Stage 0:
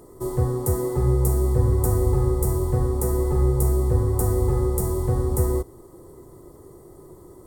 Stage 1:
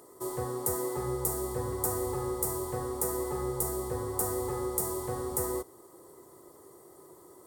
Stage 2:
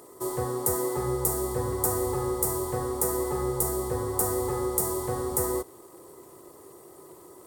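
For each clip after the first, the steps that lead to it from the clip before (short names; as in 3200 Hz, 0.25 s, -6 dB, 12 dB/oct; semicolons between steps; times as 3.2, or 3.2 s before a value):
HPF 870 Hz 6 dB/oct
crackle 240/s -56 dBFS; gain +4.5 dB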